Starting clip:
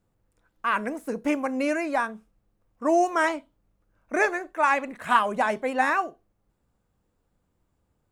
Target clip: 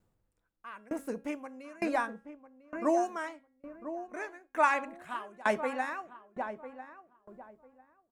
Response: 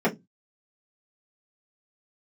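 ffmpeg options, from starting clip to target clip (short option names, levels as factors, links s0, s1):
-filter_complex "[0:a]bandreject=f=274.1:t=h:w=4,bandreject=f=548.2:t=h:w=4,bandreject=f=822.3:t=h:w=4,bandreject=f=1096.4:t=h:w=4,bandreject=f=1370.5:t=h:w=4,bandreject=f=1644.6:t=h:w=4,bandreject=f=1918.7:t=h:w=4,bandreject=f=2192.8:t=h:w=4,bandreject=f=2466.9:t=h:w=4,bandreject=f=2741:t=h:w=4,bandreject=f=3015.1:t=h:w=4,bandreject=f=3289.2:t=h:w=4,asplit=2[s0][s1];[s1]adelay=999,lowpass=f=1100:p=1,volume=0.398,asplit=2[s2][s3];[s3]adelay=999,lowpass=f=1100:p=1,volume=0.32,asplit=2[s4][s5];[s5]adelay=999,lowpass=f=1100:p=1,volume=0.32,asplit=2[s6][s7];[s7]adelay=999,lowpass=f=1100:p=1,volume=0.32[s8];[s2][s4][s6][s8]amix=inputs=4:normalize=0[s9];[s0][s9]amix=inputs=2:normalize=0,aeval=exprs='val(0)*pow(10,-27*if(lt(mod(1.1*n/s,1),2*abs(1.1)/1000),1-mod(1.1*n/s,1)/(2*abs(1.1)/1000),(mod(1.1*n/s,1)-2*abs(1.1)/1000)/(1-2*abs(1.1)/1000))/20)':c=same"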